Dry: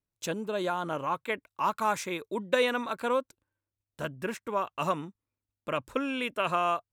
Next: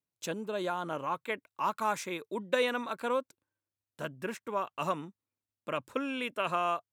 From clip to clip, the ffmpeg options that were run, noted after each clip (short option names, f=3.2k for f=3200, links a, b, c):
-af "highpass=120,volume=-3dB"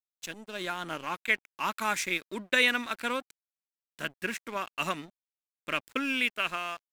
-af "equalizer=f=125:t=o:w=1:g=-11,equalizer=f=500:t=o:w=1:g=-10,equalizer=f=1k:t=o:w=1:g=-9,equalizer=f=2k:t=o:w=1:g=6,dynaudnorm=f=110:g=11:m=7dB,aeval=exprs='sgn(val(0))*max(abs(val(0))-0.00447,0)':c=same,volume=1.5dB"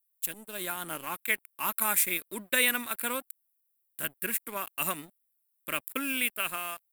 -af "aexciter=amount=14.8:drive=4.3:freq=8.7k,volume=-2.5dB"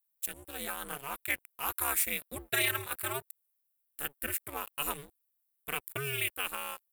-af "aeval=exprs='val(0)*sin(2*PI*140*n/s)':c=same,asoftclip=type=tanh:threshold=-16dB"